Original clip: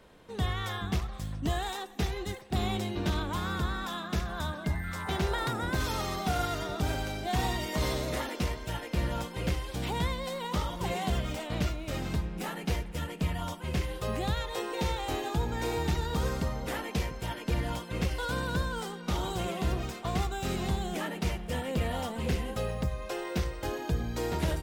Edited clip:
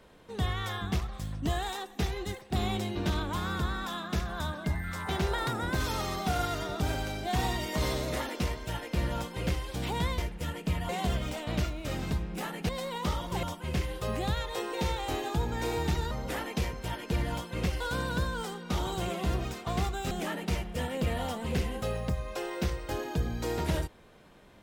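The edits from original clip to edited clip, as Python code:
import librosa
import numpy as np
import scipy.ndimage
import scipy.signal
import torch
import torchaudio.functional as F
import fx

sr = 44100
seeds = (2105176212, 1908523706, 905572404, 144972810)

y = fx.edit(x, sr, fx.swap(start_s=10.18, length_s=0.74, other_s=12.72, other_length_s=0.71),
    fx.cut(start_s=16.11, length_s=0.38),
    fx.cut(start_s=20.49, length_s=0.36), tone=tone)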